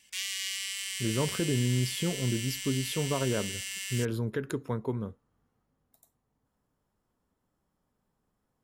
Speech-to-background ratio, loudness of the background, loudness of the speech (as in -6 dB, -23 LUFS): 2.5 dB, -34.5 LUFS, -32.0 LUFS